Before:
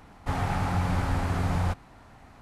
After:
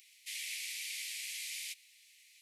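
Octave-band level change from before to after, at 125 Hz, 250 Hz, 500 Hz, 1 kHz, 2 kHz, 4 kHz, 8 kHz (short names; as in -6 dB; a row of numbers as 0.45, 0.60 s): under -40 dB, under -40 dB, under -40 dB, under -40 dB, -6.0 dB, +3.5 dB, +7.5 dB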